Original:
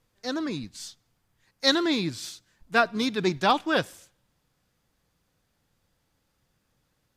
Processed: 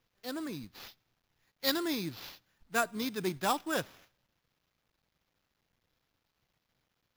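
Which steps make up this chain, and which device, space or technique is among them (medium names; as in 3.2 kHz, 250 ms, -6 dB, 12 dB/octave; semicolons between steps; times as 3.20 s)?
early companding sampler (sample-rate reducer 8.7 kHz, jitter 0%; companded quantiser 6-bit); trim -8.5 dB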